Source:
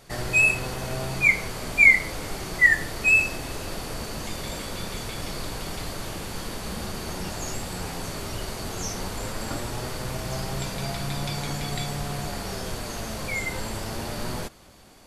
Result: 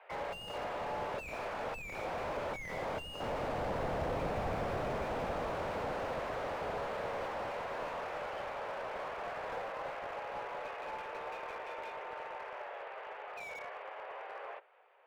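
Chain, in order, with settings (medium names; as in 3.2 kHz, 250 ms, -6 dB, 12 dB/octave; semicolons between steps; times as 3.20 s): octave divider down 1 oct, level +4 dB; Doppler pass-by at 4.38 s, 7 m/s, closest 4.5 m; mistuned SSB +200 Hz 300–2500 Hz; slew-rate limiter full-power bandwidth 2.6 Hz; trim +14 dB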